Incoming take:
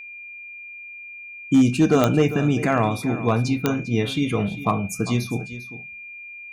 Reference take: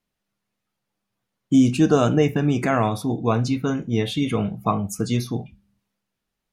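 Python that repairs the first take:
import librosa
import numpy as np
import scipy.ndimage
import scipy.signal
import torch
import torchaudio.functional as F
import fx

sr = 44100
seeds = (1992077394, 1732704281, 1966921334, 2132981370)

y = fx.fix_declip(x, sr, threshold_db=-9.5)
y = fx.fix_declick_ar(y, sr, threshold=10.0)
y = fx.notch(y, sr, hz=2400.0, q=30.0)
y = fx.fix_echo_inverse(y, sr, delay_ms=399, level_db=-14.5)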